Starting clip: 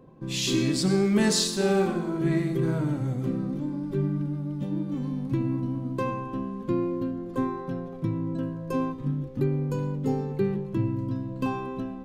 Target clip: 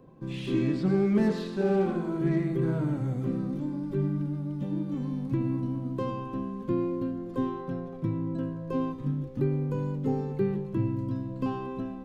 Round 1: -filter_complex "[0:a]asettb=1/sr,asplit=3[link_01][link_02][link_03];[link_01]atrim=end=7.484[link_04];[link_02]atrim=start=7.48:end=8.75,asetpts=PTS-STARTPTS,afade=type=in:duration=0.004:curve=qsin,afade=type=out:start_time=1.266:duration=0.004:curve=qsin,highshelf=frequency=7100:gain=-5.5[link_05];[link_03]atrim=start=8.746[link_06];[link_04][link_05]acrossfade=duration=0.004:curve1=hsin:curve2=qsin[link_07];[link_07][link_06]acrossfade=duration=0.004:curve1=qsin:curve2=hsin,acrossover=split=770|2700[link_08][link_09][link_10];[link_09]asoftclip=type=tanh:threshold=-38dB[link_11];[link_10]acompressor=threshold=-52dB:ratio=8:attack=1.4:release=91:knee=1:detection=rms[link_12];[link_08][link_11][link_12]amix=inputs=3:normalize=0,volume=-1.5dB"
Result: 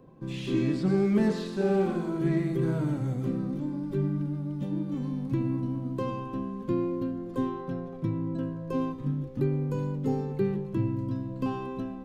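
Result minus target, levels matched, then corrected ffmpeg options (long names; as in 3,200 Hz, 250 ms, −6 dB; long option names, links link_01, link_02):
downward compressor: peak gain reduction −7 dB
-filter_complex "[0:a]asettb=1/sr,asplit=3[link_01][link_02][link_03];[link_01]atrim=end=7.484[link_04];[link_02]atrim=start=7.48:end=8.75,asetpts=PTS-STARTPTS,afade=type=in:duration=0.004:curve=qsin,afade=type=out:start_time=1.266:duration=0.004:curve=qsin,highshelf=frequency=7100:gain=-5.5[link_05];[link_03]atrim=start=8.746[link_06];[link_04][link_05]acrossfade=duration=0.004:curve1=hsin:curve2=qsin[link_07];[link_07][link_06]acrossfade=duration=0.004:curve1=qsin:curve2=hsin,acrossover=split=770|2700[link_08][link_09][link_10];[link_09]asoftclip=type=tanh:threshold=-38dB[link_11];[link_10]acompressor=threshold=-60dB:ratio=8:attack=1.4:release=91:knee=1:detection=rms[link_12];[link_08][link_11][link_12]amix=inputs=3:normalize=0,volume=-1.5dB"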